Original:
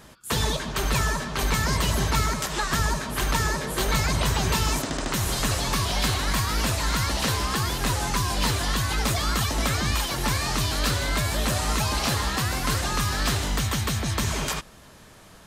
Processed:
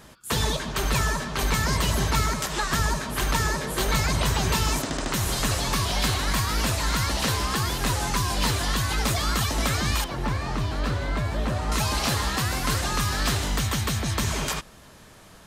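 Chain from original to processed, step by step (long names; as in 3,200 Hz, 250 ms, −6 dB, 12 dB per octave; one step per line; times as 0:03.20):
0:10.04–0:11.72: low-pass filter 1,200 Hz 6 dB per octave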